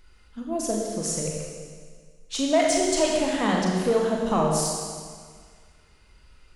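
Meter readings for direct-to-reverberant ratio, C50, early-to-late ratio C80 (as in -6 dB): -1.5 dB, 0.5 dB, 2.0 dB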